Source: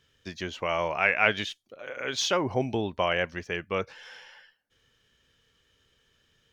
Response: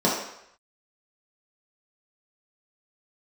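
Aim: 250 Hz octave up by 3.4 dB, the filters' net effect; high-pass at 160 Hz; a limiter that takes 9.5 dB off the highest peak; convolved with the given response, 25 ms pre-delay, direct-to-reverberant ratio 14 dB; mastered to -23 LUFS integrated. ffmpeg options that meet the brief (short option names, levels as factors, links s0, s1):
-filter_complex "[0:a]highpass=160,equalizer=f=250:t=o:g=5.5,alimiter=limit=0.168:level=0:latency=1,asplit=2[s0][s1];[1:a]atrim=start_sample=2205,adelay=25[s2];[s1][s2]afir=irnorm=-1:irlink=0,volume=0.0299[s3];[s0][s3]amix=inputs=2:normalize=0,volume=2"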